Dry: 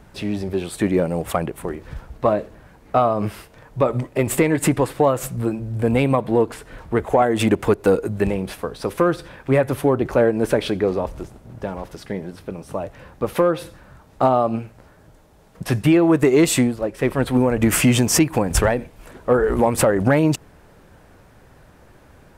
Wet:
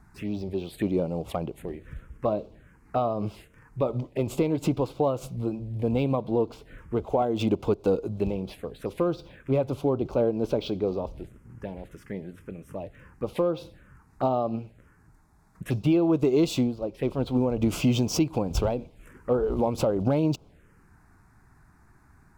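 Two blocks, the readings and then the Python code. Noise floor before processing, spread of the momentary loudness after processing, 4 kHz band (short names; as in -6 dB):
-50 dBFS, 15 LU, -8.5 dB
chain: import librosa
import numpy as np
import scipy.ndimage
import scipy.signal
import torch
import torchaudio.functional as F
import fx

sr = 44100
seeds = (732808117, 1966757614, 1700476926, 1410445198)

y = fx.env_phaser(x, sr, low_hz=500.0, high_hz=1800.0, full_db=-20.5)
y = np.interp(np.arange(len(y)), np.arange(len(y))[::2], y[::2])
y = y * 10.0 ** (-6.5 / 20.0)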